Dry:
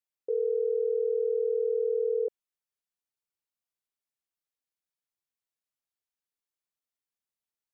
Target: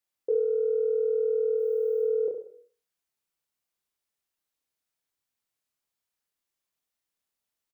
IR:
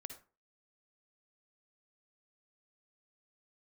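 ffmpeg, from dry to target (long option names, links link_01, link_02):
-filter_complex "[0:a]asplit=3[link_01][link_02][link_03];[link_01]afade=type=out:start_time=1.57:duration=0.02[link_04];[link_02]aemphasis=mode=production:type=75fm,afade=type=in:start_time=1.57:duration=0.02,afade=type=out:start_time=2.01:duration=0.02[link_05];[link_03]afade=type=in:start_time=2.01:duration=0.02[link_06];[link_04][link_05][link_06]amix=inputs=3:normalize=0,acontrast=46,aecho=1:1:30|63|99.3|139.2|183.2:0.631|0.398|0.251|0.158|0.1,asplit=2[link_07][link_08];[1:a]atrim=start_sample=2205,adelay=128[link_09];[link_08][link_09]afir=irnorm=-1:irlink=0,volume=-10dB[link_10];[link_07][link_10]amix=inputs=2:normalize=0,volume=-2dB"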